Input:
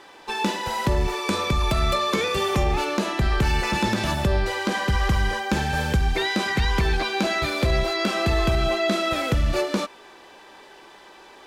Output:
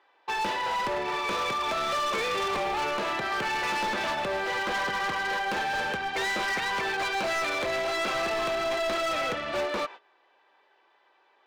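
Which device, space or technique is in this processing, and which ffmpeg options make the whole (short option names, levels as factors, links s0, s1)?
walkie-talkie: -af "highpass=520,lowpass=2900,asoftclip=type=hard:threshold=0.0376,agate=range=0.126:threshold=0.00631:ratio=16:detection=peak,volume=1.33"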